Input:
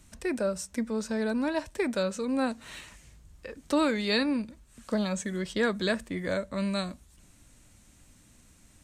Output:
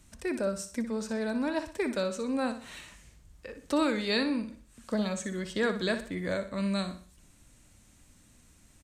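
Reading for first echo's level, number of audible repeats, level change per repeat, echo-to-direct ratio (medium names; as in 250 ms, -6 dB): -10.5 dB, 3, -8.0 dB, -10.0 dB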